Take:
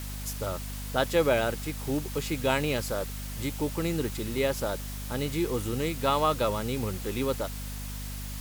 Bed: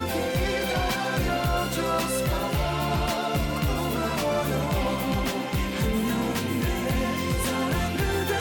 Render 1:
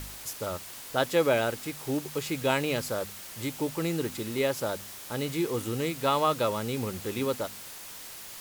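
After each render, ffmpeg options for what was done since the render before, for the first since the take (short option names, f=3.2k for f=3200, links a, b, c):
-af "bandreject=f=50:t=h:w=4,bandreject=f=100:t=h:w=4,bandreject=f=150:t=h:w=4,bandreject=f=200:t=h:w=4,bandreject=f=250:t=h:w=4"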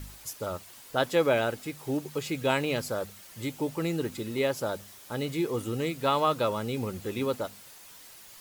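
-af "afftdn=nr=8:nf=-44"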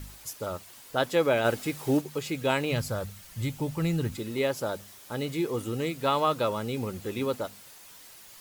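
-filter_complex "[0:a]asplit=3[a][b][c];[a]afade=t=out:st=1.44:d=0.02[d];[b]acontrast=37,afade=t=in:st=1.44:d=0.02,afade=t=out:st=2:d=0.02[e];[c]afade=t=in:st=2:d=0.02[f];[d][e][f]amix=inputs=3:normalize=0,asplit=3[g][h][i];[g]afade=t=out:st=2.71:d=0.02[j];[h]asubboost=boost=6.5:cutoff=140,afade=t=in:st=2.71:d=0.02,afade=t=out:st=4.15:d=0.02[k];[i]afade=t=in:st=4.15:d=0.02[l];[j][k][l]amix=inputs=3:normalize=0"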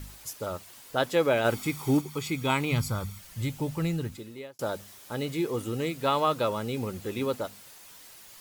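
-filter_complex "[0:a]asettb=1/sr,asplit=3[a][b][c];[a]atrim=end=1.514[d];[b]atrim=start=1.51:end=3.19,asetpts=PTS-STARTPTS,afade=t=in:d=0.004:c=qsin,afade=t=out:st=1.676:d=0.004:c=qsin,aecho=1:1:0.9:0.59,atrim=end_sample=74088[e];[c]atrim=start=3.186[f];[d][e]acrossfade=d=0.004:c1=hsin:c2=qsin[g];[g][f]acrossfade=d=0.004:c1=qsin:c2=hsin,asplit=2[h][i];[h]atrim=end=4.59,asetpts=PTS-STARTPTS,afade=t=out:st=3.76:d=0.83[j];[i]atrim=start=4.59,asetpts=PTS-STARTPTS,afade=t=in:d=0.004:c=hsin[k];[j][k]concat=n=2:v=0:a=1"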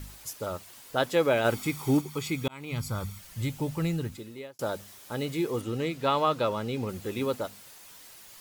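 -filter_complex "[0:a]asettb=1/sr,asplit=3[a][b][c];[a]atrim=end=5.614[d];[b]atrim=start=5.61:end=6.89,asetpts=PTS-STARTPTS,afade=t=in:d=0.004:c=qsin,afade=t=out:st=1.276:d=0.004:c=qsin,acrossover=split=6300[e][f];[f]acompressor=threshold=-55dB:ratio=4:attack=1:release=60[g];[e][g]amix=inputs=2:normalize=0[h];[c]atrim=start=6.886[i];[d][h]acrossfade=d=0.004:c1=hsin:c2=qsin[j];[j][i]acrossfade=d=0.004:c1=qsin:c2=hsin,asplit=2[k][l];[k]atrim=end=2.48,asetpts=PTS-STARTPTS,afade=t=out:st=2.476:d=0.004:c=hsin[m];[l]atrim=start=2.48,asetpts=PTS-STARTPTS,afade=t=in:d=0.56[n];[m][n]concat=n=2:v=0:a=1"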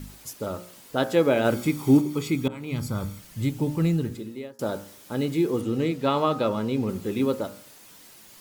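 -af "equalizer=f=240:w=0.79:g=9,bandreject=f=59.54:t=h:w=4,bandreject=f=119.08:t=h:w=4,bandreject=f=178.62:t=h:w=4,bandreject=f=238.16:t=h:w=4,bandreject=f=297.7:t=h:w=4,bandreject=f=357.24:t=h:w=4,bandreject=f=416.78:t=h:w=4,bandreject=f=476.32:t=h:w=4,bandreject=f=535.86:t=h:w=4,bandreject=f=595.4:t=h:w=4,bandreject=f=654.94:t=h:w=4,bandreject=f=714.48:t=h:w=4,bandreject=f=774.02:t=h:w=4,bandreject=f=833.56:t=h:w=4,bandreject=f=893.1:t=h:w=4,bandreject=f=952.64:t=h:w=4,bandreject=f=1.01218k:t=h:w=4,bandreject=f=1.07172k:t=h:w=4,bandreject=f=1.13126k:t=h:w=4,bandreject=f=1.1908k:t=h:w=4,bandreject=f=1.25034k:t=h:w=4,bandreject=f=1.30988k:t=h:w=4,bandreject=f=1.36942k:t=h:w=4,bandreject=f=1.42896k:t=h:w=4,bandreject=f=1.4885k:t=h:w=4,bandreject=f=1.54804k:t=h:w=4,bandreject=f=1.60758k:t=h:w=4,bandreject=f=1.66712k:t=h:w=4,bandreject=f=1.72666k:t=h:w=4,bandreject=f=1.7862k:t=h:w=4,bandreject=f=1.84574k:t=h:w=4,bandreject=f=1.90528k:t=h:w=4"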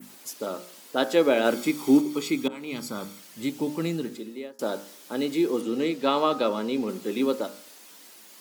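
-af "highpass=f=220:w=0.5412,highpass=f=220:w=1.3066,adynamicequalizer=threshold=0.00398:dfrequency=4500:dqfactor=0.87:tfrequency=4500:tqfactor=0.87:attack=5:release=100:ratio=0.375:range=2:mode=boostabove:tftype=bell"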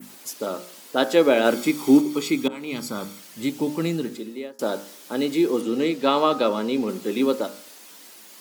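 -af "volume=3.5dB"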